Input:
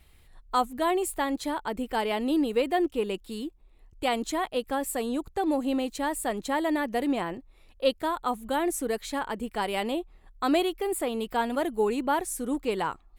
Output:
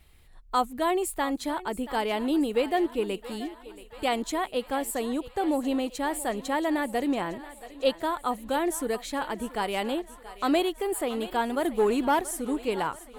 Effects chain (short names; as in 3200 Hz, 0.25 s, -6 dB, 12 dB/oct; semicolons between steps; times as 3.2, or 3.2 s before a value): 11.65–12.21 sample leveller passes 1; thinning echo 0.679 s, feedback 69%, high-pass 420 Hz, level -15 dB